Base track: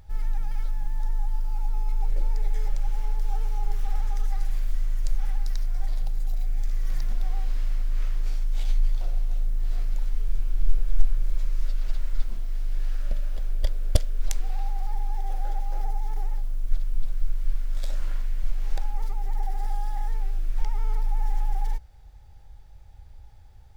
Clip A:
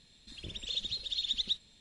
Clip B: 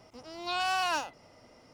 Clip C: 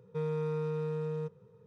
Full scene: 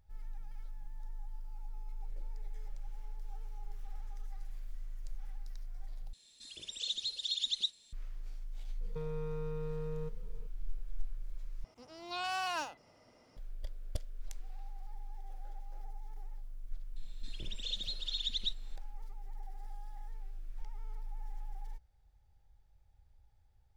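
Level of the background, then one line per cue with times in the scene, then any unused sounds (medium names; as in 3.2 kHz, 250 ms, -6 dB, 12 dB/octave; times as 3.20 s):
base track -18 dB
6.13 s: replace with A -7 dB + tone controls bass -12 dB, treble +13 dB
8.81 s: add C -0.5 dB + compression, threshold -36 dBFS
11.64 s: replace with B -6.5 dB
16.96 s: add A -3.5 dB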